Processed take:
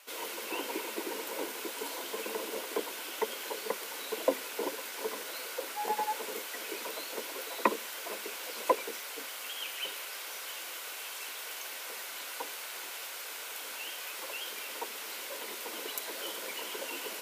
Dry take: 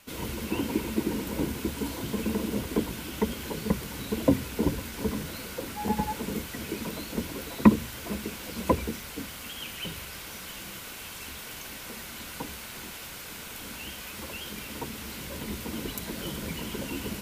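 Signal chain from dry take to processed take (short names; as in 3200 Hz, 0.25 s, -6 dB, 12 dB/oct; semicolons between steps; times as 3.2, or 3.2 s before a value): HPF 440 Hz 24 dB/oct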